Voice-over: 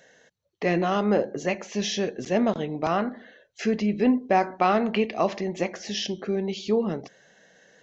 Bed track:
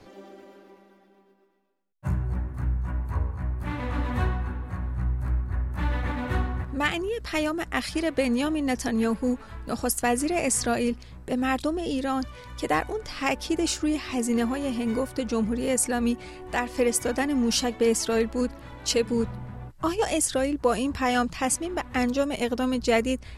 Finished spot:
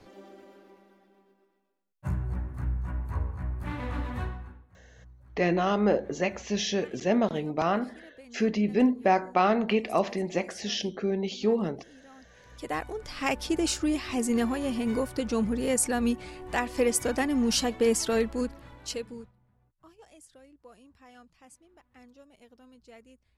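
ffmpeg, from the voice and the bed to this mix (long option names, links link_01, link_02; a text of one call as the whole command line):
ffmpeg -i stem1.wav -i stem2.wav -filter_complex "[0:a]adelay=4750,volume=-1.5dB[link_01];[1:a]volume=21dB,afade=type=out:start_time=3.89:duration=0.78:silence=0.0749894,afade=type=in:start_time=12.2:duration=1.2:silence=0.0595662,afade=type=out:start_time=18.14:duration=1.18:silence=0.0398107[link_02];[link_01][link_02]amix=inputs=2:normalize=0" out.wav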